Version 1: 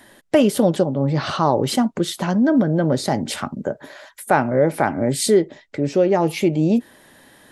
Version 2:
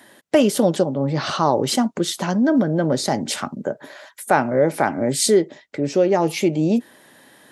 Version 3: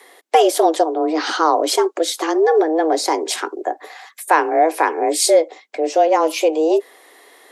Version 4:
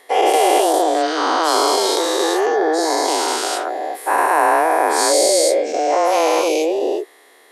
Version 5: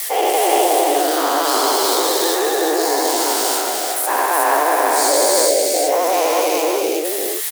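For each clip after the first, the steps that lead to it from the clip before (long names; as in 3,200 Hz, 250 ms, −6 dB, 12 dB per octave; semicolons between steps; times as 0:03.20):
Bessel high-pass filter 150 Hz; dynamic equaliser 6,200 Hz, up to +5 dB, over −45 dBFS, Q 1.3
frequency shifter +160 Hz; level +2.5 dB
every bin's largest magnitude spread in time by 480 ms; level −8 dB
spike at every zero crossing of −14 dBFS; pitch vibrato 12 Hz 76 cents; on a send: single-tap delay 369 ms −3 dB; on the sum: level −2.5 dB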